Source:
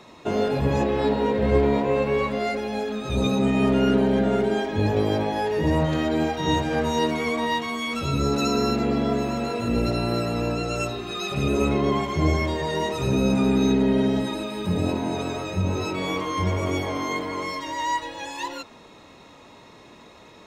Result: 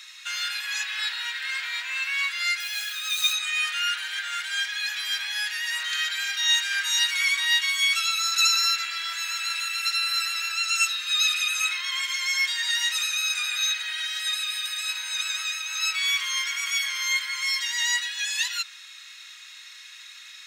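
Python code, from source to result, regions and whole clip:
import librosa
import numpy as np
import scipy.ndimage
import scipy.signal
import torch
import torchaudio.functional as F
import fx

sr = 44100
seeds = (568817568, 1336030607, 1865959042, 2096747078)

y = fx.chain(x, sr, fx.peak_eq(hz=160.0, db=-10.0, octaves=1.1),
    fx.small_body(hz=(260.0, 500.0, 2900.0), ring_ms=70, db=6),
    fx.quant_companded(bits=6), at=(2.6, 3.33))
y = scipy.signal.sosfilt(scipy.signal.cheby1(4, 1.0, 1500.0, 'highpass', fs=sr, output='sos'), y)
y = fx.high_shelf(y, sr, hz=2200.0, db=10.5)
y = F.gain(torch.from_numpy(y), 3.5).numpy()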